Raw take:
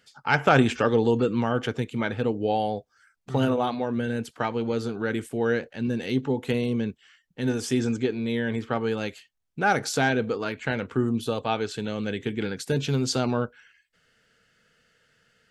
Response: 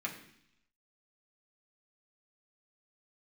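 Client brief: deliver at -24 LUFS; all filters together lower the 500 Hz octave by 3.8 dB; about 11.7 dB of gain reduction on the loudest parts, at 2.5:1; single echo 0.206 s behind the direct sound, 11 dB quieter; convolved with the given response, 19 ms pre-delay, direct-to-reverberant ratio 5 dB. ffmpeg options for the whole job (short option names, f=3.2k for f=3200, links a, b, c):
-filter_complex "[0:a]equalizer=f=500:t=o:g=-4.5,acompressor=threshold=-33dB:ratio=2.5,aecho=1:1:206:0.282,asplit=2[a][b];[1:a]atrim=start_sample=2205,adelay=19[c];[b][c]afir=irnorm=-1:irlink=0,volume=-7.5dB[d];[a][d]amix=inputs=2:normalize=0,volume=9.5dB"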